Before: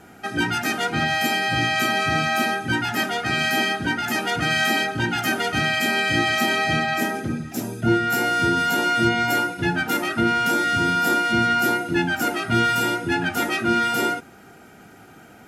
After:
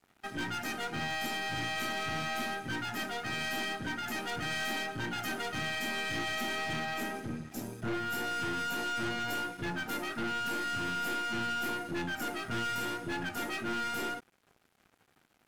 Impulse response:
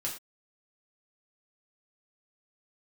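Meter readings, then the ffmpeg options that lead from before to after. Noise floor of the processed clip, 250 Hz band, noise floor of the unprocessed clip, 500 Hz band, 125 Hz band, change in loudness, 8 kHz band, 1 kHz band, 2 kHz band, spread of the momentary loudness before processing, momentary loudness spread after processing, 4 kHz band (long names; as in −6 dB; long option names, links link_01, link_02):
−71 dBFS, −14.5 dB, −47 dBFS, −14.0 dB, −14.5 dB, −13.5 dB, −11.5 dB, −13.5 dB, −13.5 dB, 4 LU, 3 LU, −12.5 dB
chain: -af "aeval=exprs='sgn(val(0))*max(abs(val(0))-0.00668,0)':channel_layout=same,aeval=exprs='(tanh(14.1*val(0)+0.4)-tanh(0.4))/14.1':channel_layout=same,volume=-8dB"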